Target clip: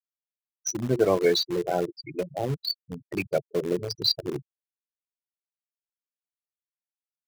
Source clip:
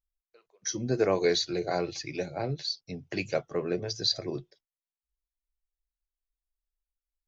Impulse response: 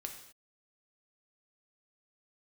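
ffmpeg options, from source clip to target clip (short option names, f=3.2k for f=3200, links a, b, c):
-filter_complex "[0:a]afftfilt=real='re*gte(hypot(re,im),0.0562)':imag='im*gte(hypot(re,im),0.0562)':win_size=1024:overlap=0.75,asplit=2[a][b];[b]acrusher=bits=4:mix=0:aa=0.000001,volume=-10.5dB[c];[a][c]amix=inputs=2:normalize=0,volume=1.5dB"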